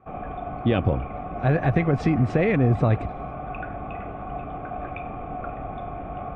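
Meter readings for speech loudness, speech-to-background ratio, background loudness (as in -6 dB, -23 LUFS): -23.0 LUFS, 11.0 dB, -34.0 LUFS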